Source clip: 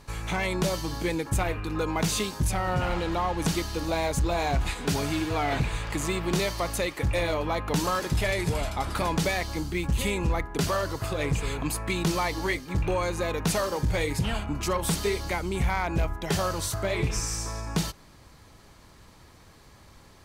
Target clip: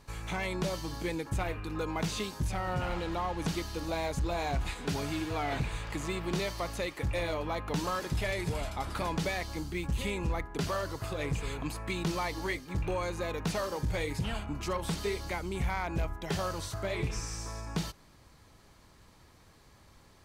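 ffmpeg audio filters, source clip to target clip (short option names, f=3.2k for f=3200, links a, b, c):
-filter_complex "[0:a]acrossover=split=5800[a][b];[b]acompressor=threshold=-41dB:ratio=4:attack=1:release=60[c];[a][c]amix=inputs=2:normalize=0,volume=-6dB"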